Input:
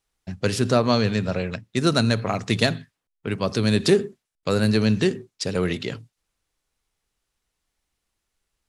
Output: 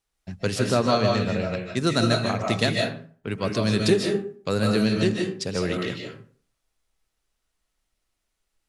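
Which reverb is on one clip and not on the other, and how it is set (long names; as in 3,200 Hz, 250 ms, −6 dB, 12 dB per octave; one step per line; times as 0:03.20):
comb and all-pass reverb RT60 0.46 s, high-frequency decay 0.6×, pre-delay 110 ms, DRR 0.5 dB
level −3 dB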